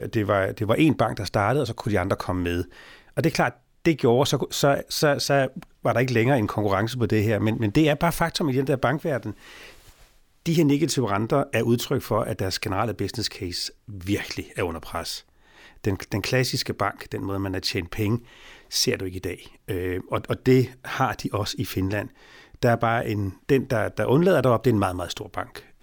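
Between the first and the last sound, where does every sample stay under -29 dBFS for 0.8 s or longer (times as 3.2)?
9.31–10.46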